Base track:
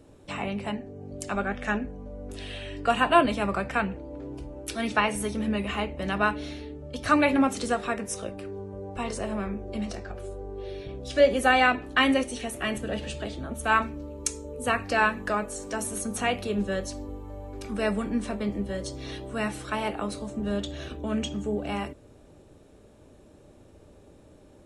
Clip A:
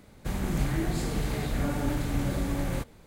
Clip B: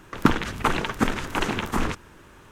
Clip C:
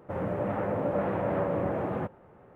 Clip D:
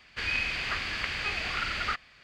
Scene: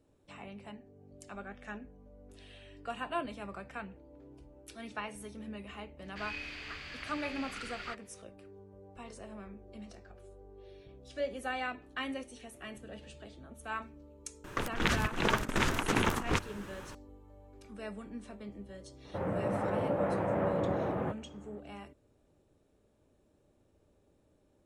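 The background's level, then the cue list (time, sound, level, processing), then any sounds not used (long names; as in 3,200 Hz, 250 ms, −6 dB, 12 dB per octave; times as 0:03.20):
base track −16 dB
0:05.99: mix in D −12.5 dB
0:14.44: mix in B −2 dB + compressor whose output falls as the input rises −28 dBFS, ratio −0.5
0:19.05: mix in C −2.5 dB
not used: A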